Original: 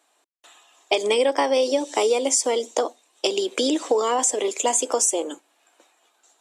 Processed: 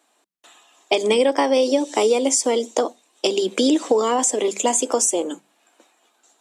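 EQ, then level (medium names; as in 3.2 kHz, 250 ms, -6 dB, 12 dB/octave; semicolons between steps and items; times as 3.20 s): peaking EQ 180 Hz +14.5 dB 0.92 oct; hum notches 50/100/150/200 Hz; +1.0 dB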